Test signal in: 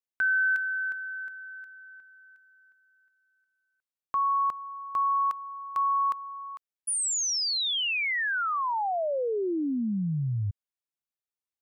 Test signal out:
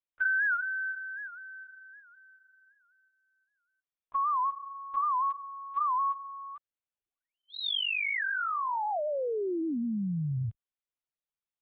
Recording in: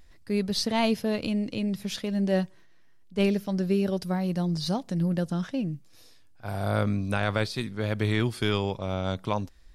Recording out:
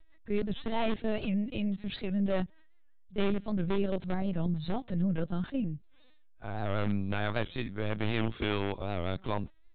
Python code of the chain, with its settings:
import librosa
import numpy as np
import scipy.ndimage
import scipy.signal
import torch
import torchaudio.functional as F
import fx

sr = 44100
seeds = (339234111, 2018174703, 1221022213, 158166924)

p1 = (np.mod(10.0 ** (18.0 / 20.0) * x + 1.0, 2.0) - 1.0) / 10.0 ** (18.0 / 20.0)
p2 = x + (p1 * 10.0 ** (-5.5 / 20.0))
p3 = fx.lpc_vocoder(p2, sr, seeds[0], excitation='pitch_kept', order=16)
p4 = fx.record_warp(p3, sr, rpm=78.0, depth_cents=160.0)
y = p4 * 10.0 ** (-6.5 / 20.0)